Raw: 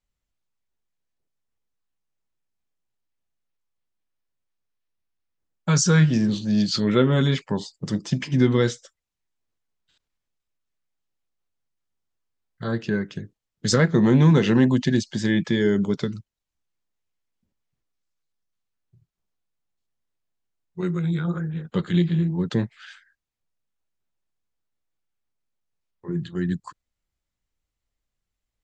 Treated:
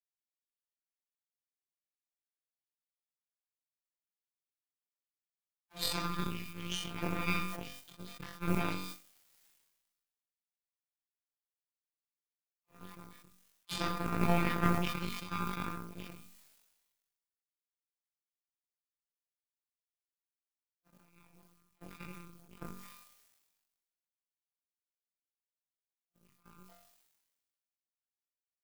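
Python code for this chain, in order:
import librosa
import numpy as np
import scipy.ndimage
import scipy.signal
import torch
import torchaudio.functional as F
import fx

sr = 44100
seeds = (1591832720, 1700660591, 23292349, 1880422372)

y = fx.pitch_heads(x, sr, semitones=-7.0)
y = fx.robotise(y, sr, hz=172.0)
y = fx.dispersion(y, sr, late='lows', ms=76.0, hz=530.0)
y = fx.dmg_noise_colour(y, sr, seeds[0], colour='blue', level_db=-45.0)
y = fx.high_shelf(y, sr, hz=6800.0, db=-5.5)
y = fx.doubler(y, sr, ms=39.0, db=-7.5)
y = fx.room_flutter(y, sr, wall_m=3.7, rt60_s=0.53)
y = fx.power_curve(y, sr, exponent=3.0)
y = fx.sustainer(y, sr, db_per_s=43.0)
y = y * 10.0 ** (-3.5 / 20.0)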